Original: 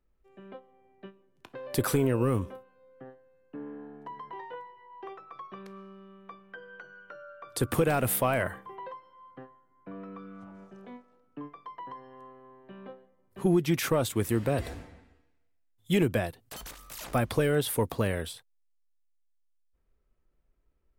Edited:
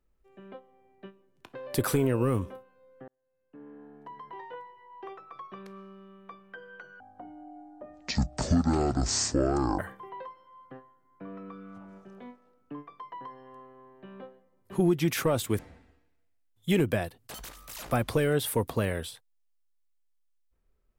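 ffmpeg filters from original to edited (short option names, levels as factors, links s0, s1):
-filter_complex "[0:a]asplit=5[s0][s1][s2][s3][s4];[s0]atrim=end=3.08,asetpts=PTS-STARTPTS,afade=t=out:st=3.076:d=0.004:c=hsin[s5];[s1]atrim=start=3.08:end=7.004,asetpts=PTS-STARTPTS,afade=t=in:d=2:c=qsin[s6];[s2]atrim=start=7:end=8.45,asetpts=PTS-STARTPTS,asetrate=22932,aresample=44100,atrim=end_sample=122971,asetpts=PTS-STARTPTS[s7];[s3]atrim=start=8.446:end=14.252[s8];[s4]atrim=start=14.808[s9];[s5][s6]concat=n=2:v=0:a=1[s10];[s10][s7]acrossfade=d=0.004:c1=hsin:c2=hsin[s11];[s11][s8]acrossfade=d=0.004:c1=hsin:c2=hsin[s12];[s12][s9]acrossfade=d=0.004:c1=hsin:c2=hsin"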